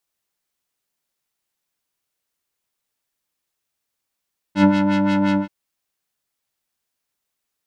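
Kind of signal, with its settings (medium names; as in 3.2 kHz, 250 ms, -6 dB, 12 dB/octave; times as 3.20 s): synth patch with filter wobble G3, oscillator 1 square, oscillator 2 square, interval +7 st, oscillator 2 level -1 dB, noise -12.5 dB, filter lowpass, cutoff 1.3 kHz, Q 0.92, filter envelope 1 oct, filter decay 0.05 s, attack 91 ms, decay 0.08 s, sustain -7 dB, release 0.11 s, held 0.82 s, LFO 5.7 Hz, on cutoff 1.2 oct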